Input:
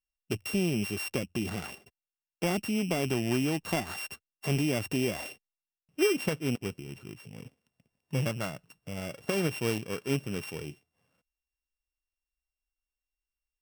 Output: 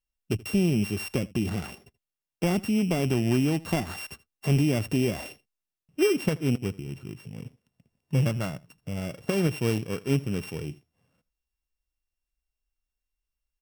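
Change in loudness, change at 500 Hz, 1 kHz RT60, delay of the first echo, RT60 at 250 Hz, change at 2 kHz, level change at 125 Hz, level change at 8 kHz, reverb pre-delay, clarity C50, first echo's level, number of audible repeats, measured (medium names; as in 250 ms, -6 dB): +4.0 dB, +3.0 dB, no reverb, 80 ms, no reverb, 0.0 dB, +7.0 dB, 0.0 dB, no reverb, no reverb, -21.5 dB, 1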